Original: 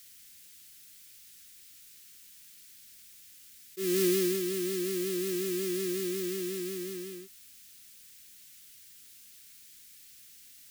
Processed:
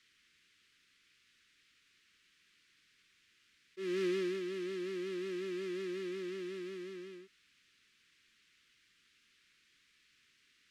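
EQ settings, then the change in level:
low-pass filter 2,300 Hz 12 dB per octave
low-shelf EQ 160 Hz −3.5 dB
low-shelf EQ 480 Hz −9.5 dB
0.0 dB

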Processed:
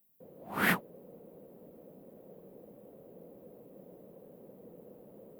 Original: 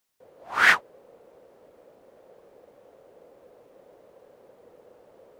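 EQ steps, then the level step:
drawn EQ curve 100 Hz 0 dB, 180 Hz +14 dB, 380 Hz +2 dB, 1,500 Hz −13 dB, 2,800 Hz −10 dB, 6,300 Hz −15 dB, 14,000 Hz +11 dB
0.0 dB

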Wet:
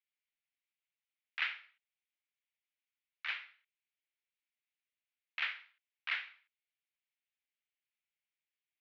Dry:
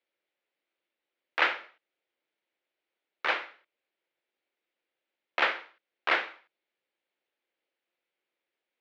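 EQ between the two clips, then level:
four-pole ladder band-pass 3,000 Hz, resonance 25%
+2.5 dB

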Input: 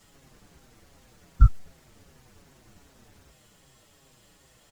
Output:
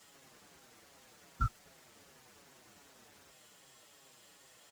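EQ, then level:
high-pass filter 530 Hz 6 dB per octave
0.0 dB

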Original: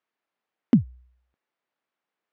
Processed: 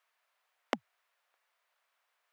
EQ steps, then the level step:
high-pass filter 620 Hz 24 dB per octave
notch filter 820 Hz, Q 12
+8.5 dB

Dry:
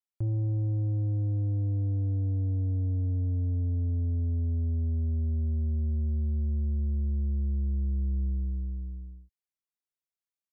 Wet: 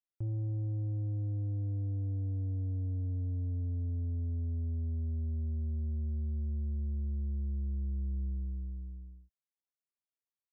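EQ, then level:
high-frequency loss of the air 350 metres
−6.0 dB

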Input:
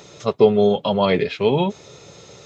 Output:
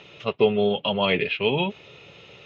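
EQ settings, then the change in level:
low-pass with resonance 2,800 Hz, resonance Q 5.9
−6.0 dB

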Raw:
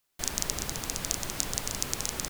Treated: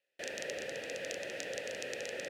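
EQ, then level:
formant filter e
high-pass filter 74 Hz
+10.5 dB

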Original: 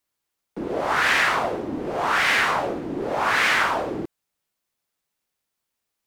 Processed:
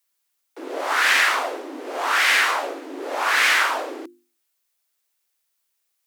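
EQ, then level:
Chebyshev high-pass filter 250 Hz, order 10
spectral tilt +2.5 dB per octave
mains-hum notches 50/100/150/200/250/300/350 Hz
0.0 dB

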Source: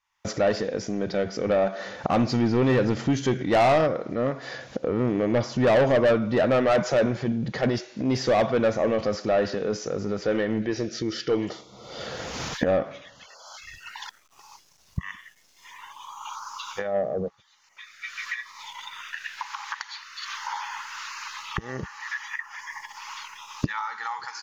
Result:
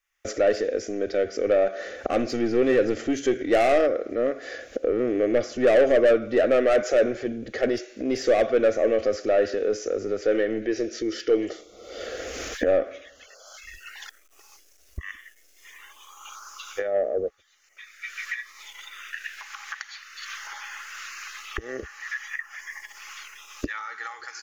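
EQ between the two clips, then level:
parametric band 140 Hz −14 dB 1.7 octaves
parametric band 4,200 Hz −11 dB 1.4 octaves
phaser with its sweep stopped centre 390 Hz, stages 4
+7.0 dB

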